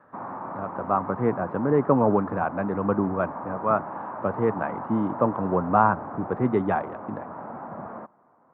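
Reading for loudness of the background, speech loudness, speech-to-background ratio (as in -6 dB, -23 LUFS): -36.5 LUFS, -25.5 LUFS, 11.0 dB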